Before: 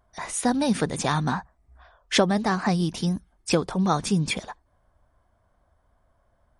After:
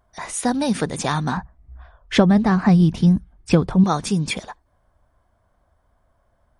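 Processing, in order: 1.37–3.84 s: tone controls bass +11 dB, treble -9 dB; trim +2 dB

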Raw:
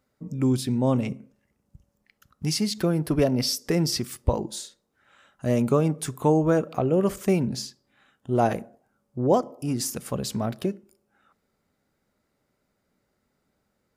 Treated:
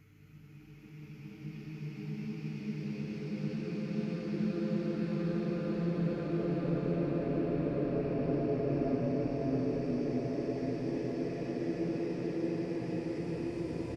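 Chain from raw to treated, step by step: rattle on loud lows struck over -30 dBFS, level -25 dBFS; low-pass that closes with the level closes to 1.2 kHz, closed at -21 dBFS; hum 50 Hz, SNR 25 dB; flange 1.6 Hz, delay 8.6 ms, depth 3.1 ms, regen -32%; on a send: delay 294 ms -9 dB; on the sum: Paulstretch 7.2×, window 1.00 s, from 2.05 s; trim -5 dB

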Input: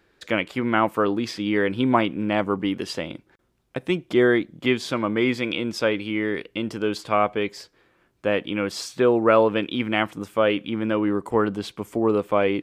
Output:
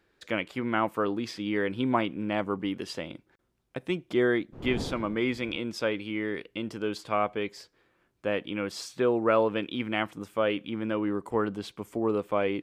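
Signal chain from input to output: 4.52–5.56 s: wind noise 330 Hz -30 dBFS; trim -6.5 dB

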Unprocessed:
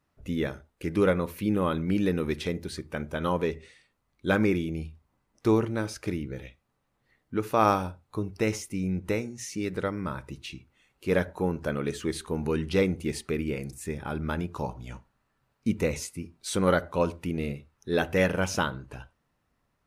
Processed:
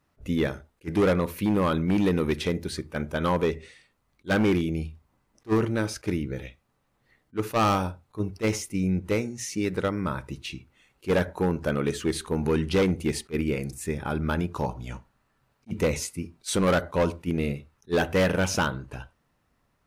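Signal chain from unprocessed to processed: hard clipper -21.5 dBFS, distortion -11 dB; attacks held to a fixed rise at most 480 dB/s; trim +4 dB

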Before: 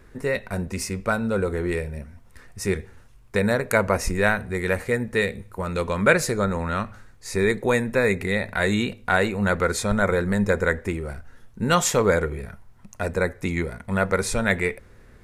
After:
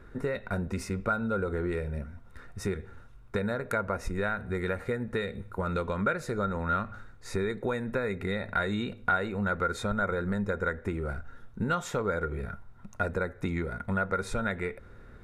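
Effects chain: compression 6:1, threshold -27 dBFS, peak gain reduction 15 dB; treble shelf 2.7 kHz -12 dB; small resonant body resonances 1.4/3.7 kHz, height 12 dB, ringing for 30 ms

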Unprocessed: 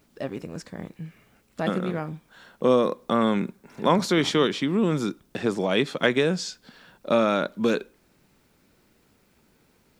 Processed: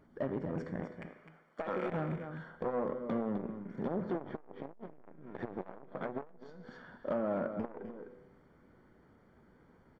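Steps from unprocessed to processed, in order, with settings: rattle on loud lows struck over -31 dBFS, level -20 dBFS; 0.81–1.90 s: high-pass 400 Hz 12 dB/octave; low-pass that closes with the level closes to 910 Hz, closed at -18 dBFS; 2.98–4.03 s: peaking EQ 930 Hz -13 dB 0.73 oct; compression 10:1, threshold -26 dBFS, peak gain reduction 12 dB; hard clipper -27 dBFS, distortion -12 dB; Savitzky-Golay filter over 41 samples; delay 256 ms -9.5 dB; reverberation RT60 0.90 s, pre-delay 8 ms, DRR 10 dB; transformer saturation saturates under 470 Hz

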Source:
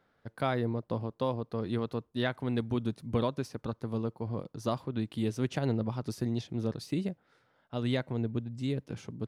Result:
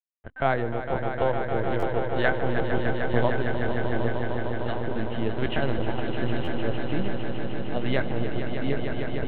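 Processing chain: send-on-delta sampling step -51.5 dBFS; 4.14–4.78 s: high-pass 1.2 kHz 12 dB/octave; reverberation, pre-delay 3 ms, DRR 22 dB; LPC vocoder at 8 kHz pitch kept; 5.37–6.37 s: treble shelf 3.1 kHz +11 dB; echo with a slow build-up 152 ms, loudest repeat 5, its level -9 dB; buffer glitch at 1.79/6.44 s, samples 512, times 2

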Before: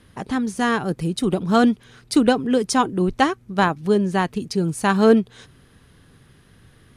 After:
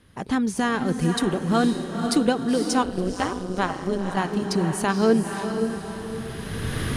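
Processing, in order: recorder AGC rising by 18 dB/s; echo that smears into a reverb 501 ms, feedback 48%, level -6 dB; 2.83–4.17 s: AM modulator 190 Hz, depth 70%; trim -5 dB

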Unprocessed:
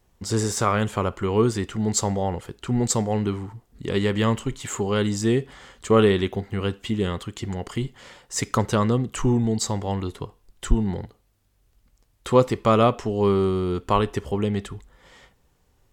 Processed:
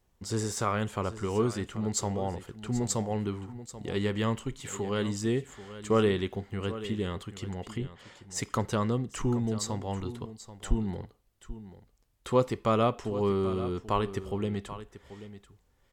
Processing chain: 7.71–8.35 s: low-pass that closes with the level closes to 2.5 kHz, closed at -25 dBFS; on a send: delay 785 ms -14 dB; on the sum: trim -7.5 dB

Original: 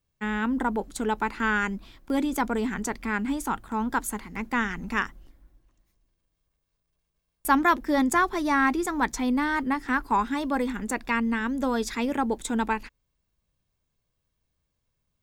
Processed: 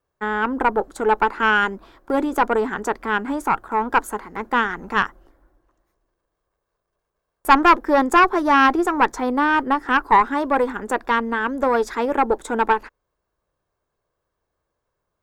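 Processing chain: high-order bell 740 Hz +13.5 dB 2.7 oct; valve stage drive 4 dB, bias 0.65

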